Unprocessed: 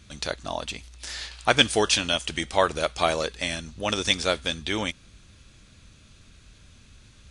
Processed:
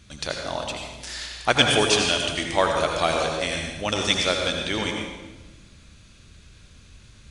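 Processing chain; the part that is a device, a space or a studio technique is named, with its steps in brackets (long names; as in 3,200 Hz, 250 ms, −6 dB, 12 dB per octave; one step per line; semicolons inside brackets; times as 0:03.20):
bathroom (convolution reverb RT60 1.2 s, pre-delay 72 ms, DRR 1.5 dB)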